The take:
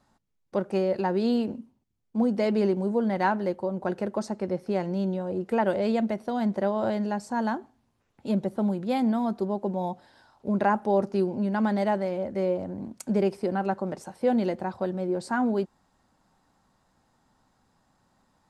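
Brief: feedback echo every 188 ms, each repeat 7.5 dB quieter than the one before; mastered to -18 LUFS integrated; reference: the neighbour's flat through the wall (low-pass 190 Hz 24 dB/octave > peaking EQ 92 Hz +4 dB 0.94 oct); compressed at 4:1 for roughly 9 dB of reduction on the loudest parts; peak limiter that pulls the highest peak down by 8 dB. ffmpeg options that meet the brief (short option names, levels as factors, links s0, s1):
-af "acompressor=threshold=0.0316:ratio=4,alimiter=level_in=1.5:limit=0.0631:level=0:latency=1,volume=0.668,lowpass=f=190:w=0.5412,lowpass=f=190:w=1.3066,equalizer=f=92:t=o:w=0.94:g=4,aecho=1:1:188|376|564|752|940:0.422|0.177|0.0744|0.0312|0.0131,volume=17.8"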